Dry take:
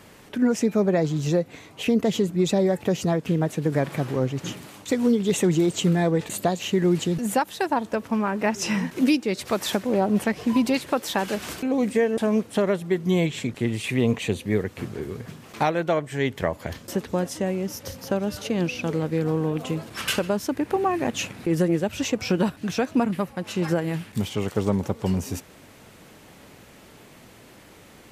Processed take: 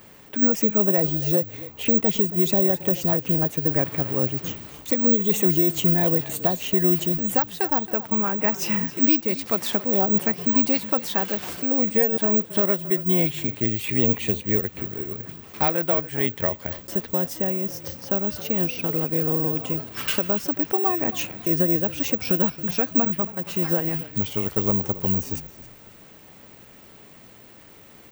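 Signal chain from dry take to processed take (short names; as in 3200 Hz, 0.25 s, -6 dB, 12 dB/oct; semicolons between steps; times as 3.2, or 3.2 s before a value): on a send: frequency-shifting echo 0.272 s, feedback 32%, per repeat -33 Hz, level -17 dB; on the sum: careless resampling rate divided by 2×, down filtered, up zero stuff; gain -2 dB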